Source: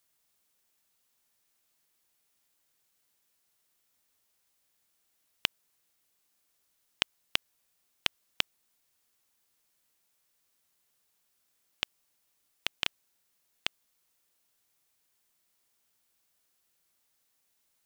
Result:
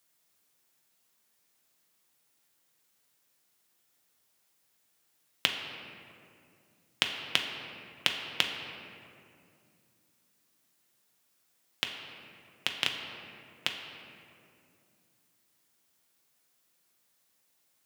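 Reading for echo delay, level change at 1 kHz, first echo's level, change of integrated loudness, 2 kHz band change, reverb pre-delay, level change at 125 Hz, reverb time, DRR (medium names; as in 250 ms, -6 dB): no echo, +3.5 dB, no echo, +1.5 dB, +3.5 dB, 6 ms, +4.0 dB, 2.4 s, 2.0 dB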